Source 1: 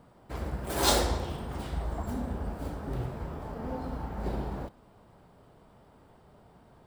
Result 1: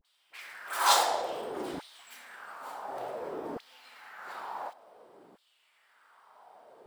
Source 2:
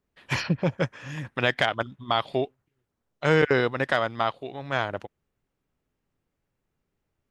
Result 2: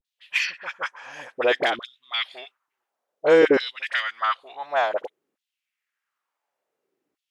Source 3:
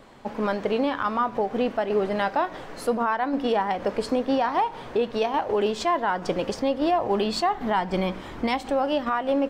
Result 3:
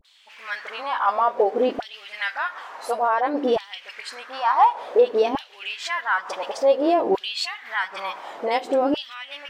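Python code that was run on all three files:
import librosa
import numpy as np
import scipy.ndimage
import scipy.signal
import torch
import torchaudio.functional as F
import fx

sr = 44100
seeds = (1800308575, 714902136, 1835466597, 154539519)

y = fx.filter_lfo_highpass(x, sr, shape='saw_down', hz=0.56, low_hz=280.0, high_hz=3800.0, q=2.9)
y = fx.vibrato(y, sr, rate_hz=0.67, depth_cents=63.0)
y = fx.dispersion(y, sr, late='highs', ms=41.0, hz=1100.0)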